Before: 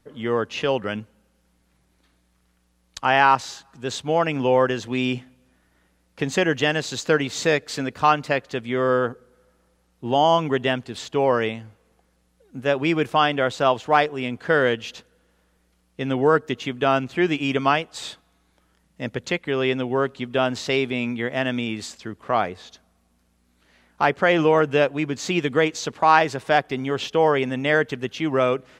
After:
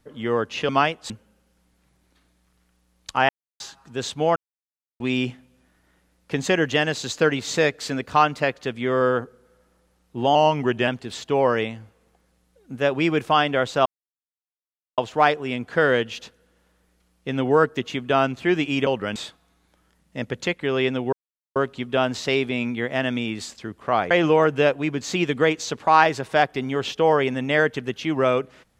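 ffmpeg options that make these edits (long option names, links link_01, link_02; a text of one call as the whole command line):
ffmpeg -i in.wav -filter_complex "[0:a]asplit=14[link_01][link_02][link_03][link_04][link_05][link_06][link_07][link_08][link_09][link_10][link_11][link_12][link_13][link_14];[link_01]atrim=end=0.692[link_15];[link_02]atrim=start=17.588:end=18.002[link_16];[link_03]atrim=start=0.978:end=3.17,asetpts=PTS-STARTPTS,afade=type=out:start_time=2.188:duration=0.004:curve=hsin[link_17];[link_04]atrim=start=3.17:end=3.48,asetpts=PTS-STARTPTS,volume=0[link_18];[link_05]atrim=start=3.48:end=4.24,asetpts=PTS-STARTPTS,afade=type=in:duration=0.004:curve=hsin,afade=type=out:start_time=0.756:duration=0.004:curve=hsin[link_19];[link_06]atrim=start=4.24:end=4.88,asetpts=PTS-STARTPTS,volume=0[link_20];[link_07]atrim=start=4.88:end=10.234,asetpts=PTS-STARTPTS,afade=type=in:duration=0.004:curve=hsin[link_21];[link_08]atrim=start=10.23:end=10.72,asetpts=PTS-STARTPTS,asetrate=41013,aresample=44100,atrim=end_sample=23235,asetpts=PTS-STARTPTS[link_22];[link_09]atrim=start=10.716:end=13.7,asetpts=PTS-STARTPTS,afade=type=out:start_time=2.98:duration=0.004:curve=hsin,apad=pad_dur=1.12[link_23];[link_10]atrim=start=13.7:end=17.592,asetpts=PTS-STARTPTS,afade=type=in:duration=0.004:curve=hsin[link_24];[link_11]atrim=start=0.688:end=0.982[link_25];[link_12]atrim=start=17.998:end=19.97,asetpts=PTS-STARTPTS,afade=type=out:start_time=1.968:duration=0.004:curve=hsin,apad=pad_dur=0.43[link_26];[link_13]atrim=start=19.97:end=22.522,asetpts=PTS-STARTPTS,afade=type=in:duration=0.004:curve=hsin[link_27];[link_14]atrim=start=24.258[link_28];[link_15][link_16]acrossfade=duration=0.004:curve1=hsin:curve2=hsin[link_29];[link_17][link_18][link_19][link_20][link_21]concat=n=5:v=0:a=1[link_30];[link_29][link_30]acrossfade=duration=0.004:curve1=hsin:curve2=hsin[link_31];[link_31][link_22]acrossfade=duration=0.004:curve1=hsin:curve2=hsin[link_32];[link_23][link_24]concat=n=2:v=0:a=1[link_33];[link_32][link_33]acrossfade=duration=0.004:curve1=hsin:curve2=hsin[link_34];[link_34][link_25]acrossfade=duration=0.004:curve1=hsin:curve2=hsin[link_35];[link_26][link_27]concat=n=2:v=0:a=1[link_36];[link_35][link_36]acrossfade=duration=0.004:curve1=hsin:curve2=hsin[link_37];[link_37][link_28]acrossfade=duration=0.004:curve1=hsin:curve2=hsin" out.wav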